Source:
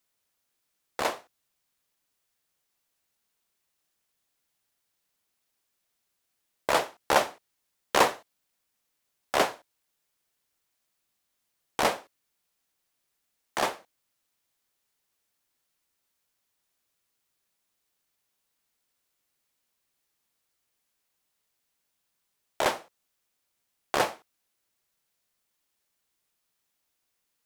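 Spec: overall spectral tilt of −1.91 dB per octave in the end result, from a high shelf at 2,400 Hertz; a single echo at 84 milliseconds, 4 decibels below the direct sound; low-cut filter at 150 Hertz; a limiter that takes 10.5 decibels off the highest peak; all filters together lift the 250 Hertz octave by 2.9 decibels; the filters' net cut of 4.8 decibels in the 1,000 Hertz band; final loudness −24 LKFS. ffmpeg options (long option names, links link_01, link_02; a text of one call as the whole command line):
ffmpeg -i in.wav -af "highpass=150,equalizer=frequency=250:width_type=o:gain=5,equalizer=frequency=1000:width_type=o:gain=-8,highshelf=frequency=2400:gain=7.5,alimiter=limit=-11dB:level=0:latency=1,aecho=1:1:84:0.631,volume=4.5dB" out.wav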